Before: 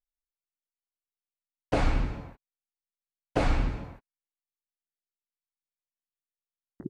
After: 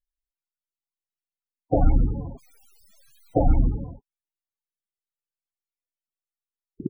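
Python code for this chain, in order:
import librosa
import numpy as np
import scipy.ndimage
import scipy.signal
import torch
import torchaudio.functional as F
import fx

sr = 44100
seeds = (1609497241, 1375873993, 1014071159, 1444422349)

y = fx.zero_step(x, sr, step_db=-41.5, at=(1.89, 3.39))
y = fx.spec_topn(y, sr, count=16)
y = F.gain(torch.from_numpy(y), 7.5).numpy()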